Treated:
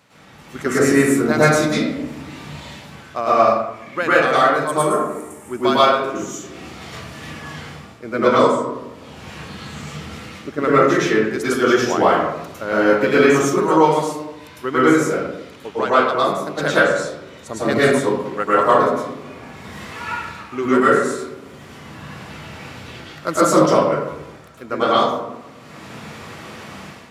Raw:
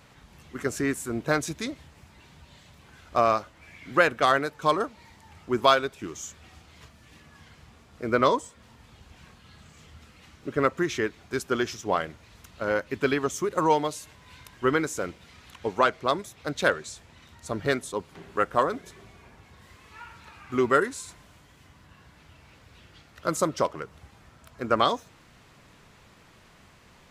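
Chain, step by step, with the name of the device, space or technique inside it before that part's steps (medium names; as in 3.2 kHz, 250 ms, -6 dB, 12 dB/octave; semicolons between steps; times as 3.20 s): 4.67–5.51 s: resonant high shelf 6.4 kHz +13.5 dB, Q 3; far laptop microphone (reverberation RT60 0.95 s, pre-delay 100 ms, DRR -10 dB; high-pass 140 Hz 12 dB/octave; level rider gain up to 11 dB); trim -1 dB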